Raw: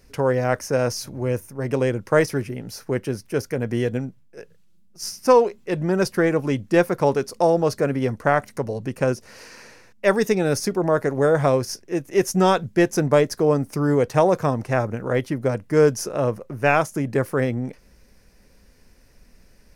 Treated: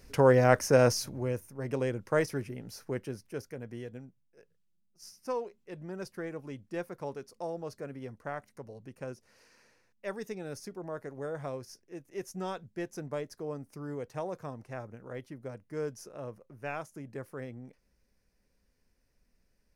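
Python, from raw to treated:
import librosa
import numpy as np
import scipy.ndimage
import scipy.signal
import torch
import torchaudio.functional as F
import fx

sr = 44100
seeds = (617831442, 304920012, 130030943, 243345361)

y = fx.gain(x, sr, db=fx.line((0.87, -1.0), (1.36, -10.0), (2.85, -10.0), (3.87, -19.5)))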